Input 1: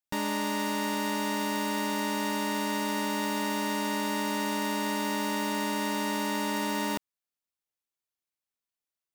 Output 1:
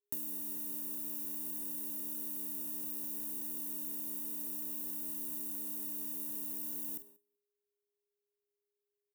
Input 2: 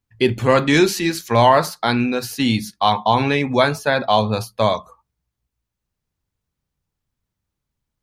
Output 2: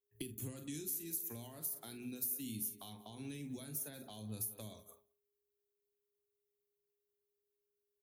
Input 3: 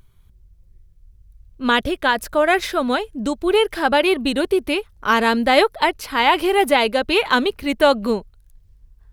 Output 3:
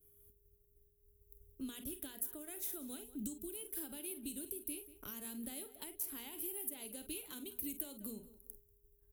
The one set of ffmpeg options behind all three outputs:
-filter_complex "[0:a]highpass=f=89:p=1,aexciter=amount=13:drive=4.2:freq=6.9k,asplit=2[a][b];[b]aecho=0:1:34|47:0.15|0.224[c];[a][c]amix=inputs=2:normalize=0,acompressor=threshold=-28dB:ratio=20,equalizer=f=290:t=o:w=0.9:g=12,bandreject=f=60:t=h:w=6,bandreject=f=120:t=h:w=6,bandreject=f=180:t=h:w=6,bandreject=f=240:t=h:w=6,asplit=2[d][e];[e]aecho=0:1:189|378:0.112|0.0292[f];[d][f]amix=inputs=2:normalize=0,acrossover=split=200|3000[g][h][i];[h]acompressor=threshold=-41dB:ratio=6[j];[g][j][i]amix=inputs=3:normalize=0,aeval=exprs='val(0)+0.002*sin(2*PI*410*n/s)':c=same,agate=range=-33dB:threshold=-43dB:ratio=3:detection=peak,equalizer=f=125:t=o:w=1:g=-4,equalizer=f=250:t=o:w=1:g=-7,equalizer=f=500:t=o:w=1:g=-5,equalizer=f=1k:t=o:w=1:g=-10,equalizer=f=2k:t=o:w=1:g=-7,equalizer=f=4k:t=o:w=1:g=-4,equalizer=f=8k:t=o:w=1:g=-10,volume=-3.5dB"

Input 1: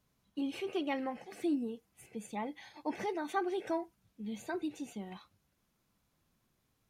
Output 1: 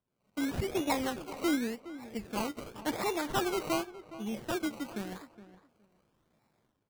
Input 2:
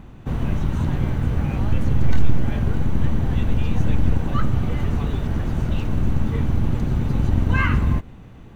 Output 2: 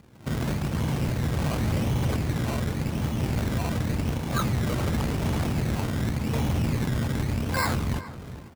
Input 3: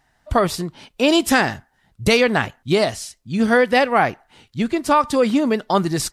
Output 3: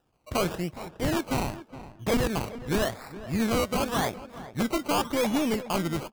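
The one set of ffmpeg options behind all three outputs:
-filter_complex "[0:a]aeval=exprs='if(lt(val(0),0),0.447*val(0),val(0))':c=same,highpass=91,equalizer=f=2.3k:t=o:w=0.31:g=14.5,dynaudnorm=f=100:g=5:m=14.5dB,aresample=11025,asoftclip=type=tanh:threshold=-12dB,aresample=44100,acrusher=samples=20:mix=1:aa=0.000001:lfo=1:lforange=12:lforate=0.89,asplit=2[a][b];[b]adelay=416,lowpass=f=2.1k:p=1,volume=-14.5dB,asplit=2[c][d];[d]adelay=416,lowpass=f=2.1k:p=1,volume=0.18[e];[c][e]amix=inputs=2:normalize=0[f];[a][f]amix=inputs=2:normalize=0,volume=-8dB"

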